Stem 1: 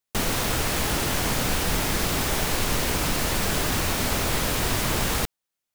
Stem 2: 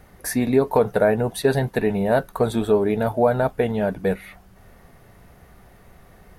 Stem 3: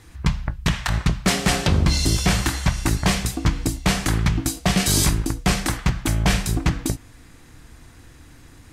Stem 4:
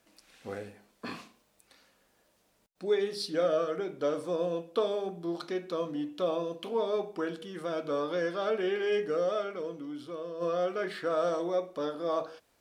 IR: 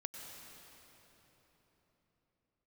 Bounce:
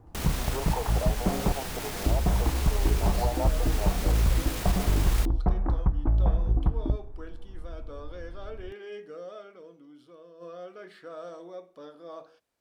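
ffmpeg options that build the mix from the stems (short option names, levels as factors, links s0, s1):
-filter_complex "[0:a]volume=0.501[s0];[1:a]aeval=exprs='0.251*(abs(mod(val(0)/0.251+3,4)-2)-1)':c=same,highpass=450,equalizer=f=830:t=o:w=0.63:g=12,volume=0.2,asplit=2[s1][s2];[2:a]asubboost=boost=7.5:cutoff=52,volume=0.631,asplit=3[s3][s4][s5];[s3]atrim=end=1.52,asetpts=PTS-STARTPTS,afade=t=out:st=1.516:d=0.004:c=hsin[s6];[s4]atrim=start=1.52:end=2.06,asetpts=PTS-STARTPTS,volume=0[s7];[s5]atrim=start=2.06,asetpts=PTS-STARTPTS,afade=t=in:d=0.004:c=hsin[s8];[s6][s7][s8]concat=n=3:v=0:a=1[s9];[3:a]volume=0.251[s10];[s2]apad=whole_len=253196[s11];[s0][s11]sidechaincompress=threshold=0.0224:ratio=4:attack=16:release=1020[s12];[s1][s9]amix=inputs=2:normalize=0,lowpass=f=1000:w=0.5412,lowpass=f=1000:w=1.3066,acompressor=threshold=0.112:ratio=6,volume=1[s13];[s12][s10]amix=inputs=2:normalize=0,alimiter=level_in=1.19:limit=0.0631:level=0:latency=1:release=16,volume=0.841,volume=1[s14];[s13][s14]amix=inputs=2:normalize=0"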